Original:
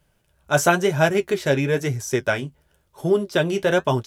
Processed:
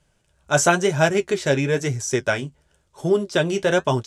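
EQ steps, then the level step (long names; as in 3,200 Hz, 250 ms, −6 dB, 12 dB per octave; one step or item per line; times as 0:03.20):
low-pass with resonance 7,800 Hz, resonance Q 1.8
0.0 dB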